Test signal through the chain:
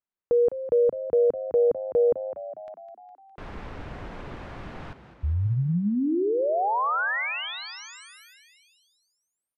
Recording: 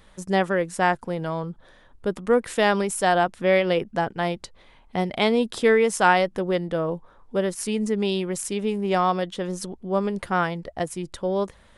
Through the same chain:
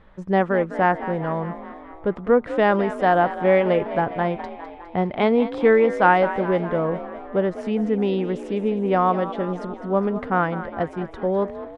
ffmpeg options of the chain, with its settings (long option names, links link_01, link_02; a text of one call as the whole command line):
ffmpeg -i in.wav -filter_complex "[0:a]lowpass=1800,asplit=8[link_01][link_02][link_03][link_04][link_05][link_06][link_07][link_08];[link_02]adelay=205,afreqshift=50,volume=-13dB[link_09];[link_03]adelay=410,afreqshift=100,volume=-17dB[link_10];[link_04]adelay=615,afreqshift=150,volume=-21dB[link_11];[link_05]adelay=820,afreqshift=200,volume=-25dB[link_12];[link_06]adelay=1025,afreqshift=250,volume=-29.1dB[link_13];[link_07]adelay=1230,afreqshift=300,volume=-33.1dB[link_14];[link_08]adelay=1435,afreqshift=350,volume=-37.1dB[link_15];[link_01][link_09][link_10][link_11][link_12][link_13][link_14][link_15]amix=inputs=8:normalize=0,volume=2.5dB" out.wav